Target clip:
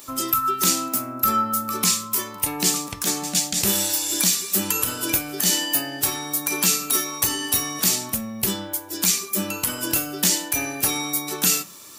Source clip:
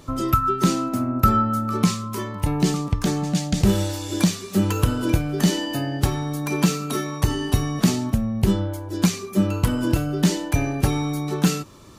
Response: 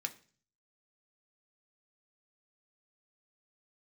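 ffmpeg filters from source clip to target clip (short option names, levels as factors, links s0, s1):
-filter_complex "[0:a]aemphasis=mode=production:type=riaa,asplit=2[s0][s1];[1:a]atrim=start_sample=2205[s2];[s1][s2]afir=irnorm=-1:irlink=0,volume=0.944[s3];[s0][s3]amix=inputs=2:normalize=0,alimiter=level_in=1.12:limit=0.891:release=50:level=0:latency=1,volume=0.531"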